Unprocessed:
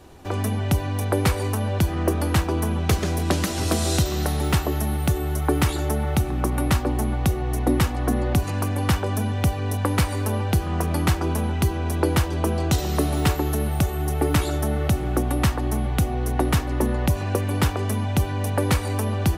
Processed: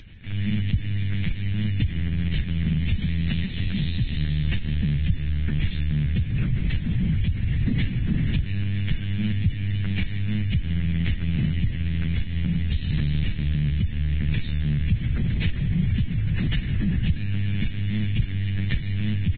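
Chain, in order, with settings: dynamic EQ 1600 Hz, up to -6 dB, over -44 dBFS, Q 1.9; elliptic band-stop 220–1800 Hz, stop band 60 dB; on a send at -21 dB: reverb, pre-delay 3 ms; on the sum: limiter -17 dBFS, peak gain reduction 7.5 dB; air absorption 81 m; LPC vocoder at 8 kHz pitch kept; upward compressor, threshold -42 dBFS; frequency-shifting echo 0.154 s, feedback 47%, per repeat +37 Hz, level -17.5 dB; gain +2.5 dB; Vorbis 16 kbps 16000 Hz

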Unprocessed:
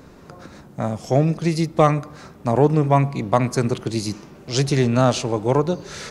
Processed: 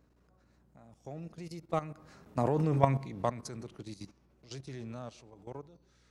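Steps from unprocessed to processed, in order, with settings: Doppler pass-by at 2.73, 13 m/s, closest 2.3 m; level quantiser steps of 14 dB; hum 60 Hz, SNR 33 dB

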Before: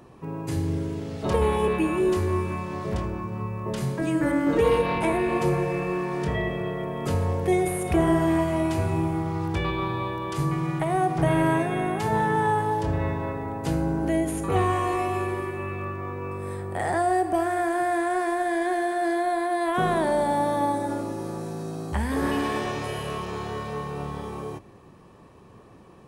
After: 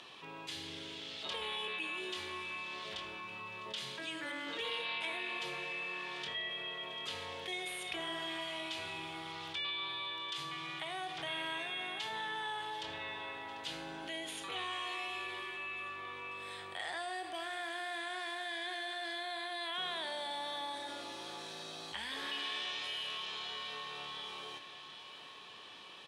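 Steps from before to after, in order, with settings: band-pass 3400 Hz, Q 4; feedback echo 0.744 s, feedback 55%, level -19 dB; fast leveller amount 50%; gain +3.5 dB

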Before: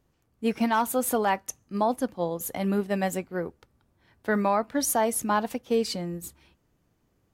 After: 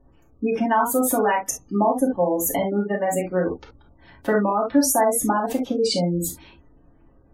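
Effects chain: spectral gate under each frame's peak -25 dB strong; compressor, threshold -30 dBFS, peak gain reduction 10.5 dB; spectral gate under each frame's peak -25 dB strong; reverb, pre-delay 3 ms, DRR -5 dB; gain +7 dB

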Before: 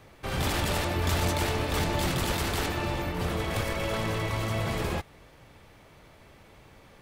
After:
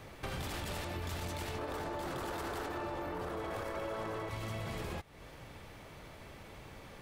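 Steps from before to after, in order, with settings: 1.58–4.3 band shelf 690 Hz +9.5 dB 2.8 oct; limiter -19.5 dBFS, peak gain reduction 9.5 dB; compressor 4:1, threshold -42 dBFS, peak gain reduction 15 dB; gain +2.5 dB

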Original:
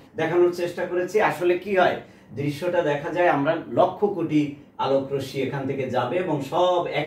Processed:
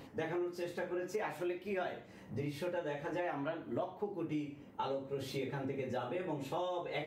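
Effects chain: compressor 6:1, threshold -32 dBFS, peak gain reduction 17.5 dB; gain -4 dB

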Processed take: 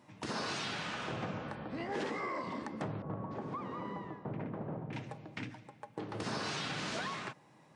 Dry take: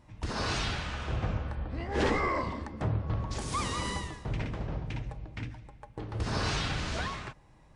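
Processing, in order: HPF 150 Hz 24 dB/oct; compressor 12:1, threshold -35 dBFS, peak gain reduction 12 dB; 3.02–4.93 LPF 1100 Hz 12 dB/oct; gain +1 dB

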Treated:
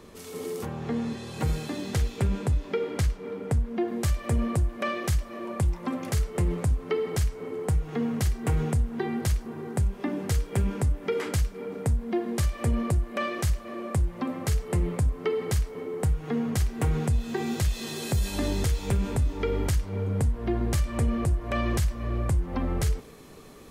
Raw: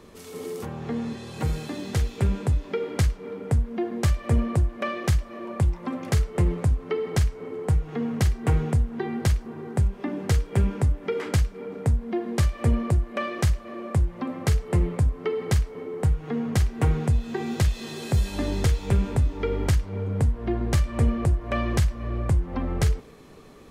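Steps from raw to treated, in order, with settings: high shelf 6500 Hz +2.5 dB, from 3.88 s +9.5 dB; limiter -17.5 dBFS, peak gain reduction 7 dB

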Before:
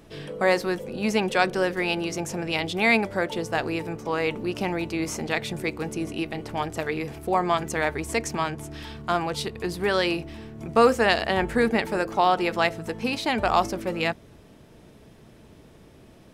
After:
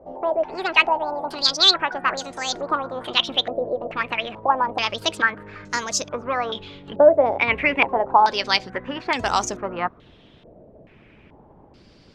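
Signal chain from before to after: speed glide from 180% -> 89%; harmonic-percussive split harmonic -7 dB; stepped low-pass 2.3 Hz 620–6700 Hz; gain +2 dB

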